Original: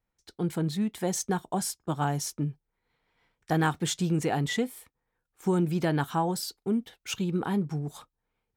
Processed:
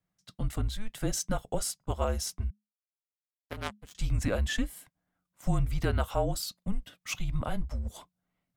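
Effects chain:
0:02.50–0:03.95: power curve on the samples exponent 3
frequency shifter −210 Hz
level −1 dB

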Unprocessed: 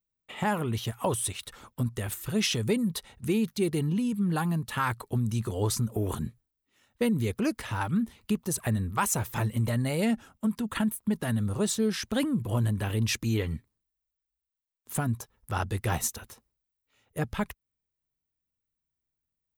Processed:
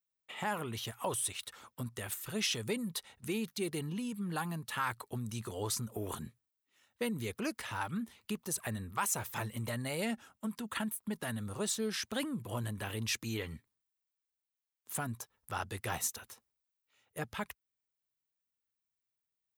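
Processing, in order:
high-pass filter 64 Hz
low-shelf EQ 440 Hz −10 dB
in parallel at −2.5 dB: brickwall limiter −23.5 dBFS, peak gain reduction 9 dB
on the sum: level −7.5 dB

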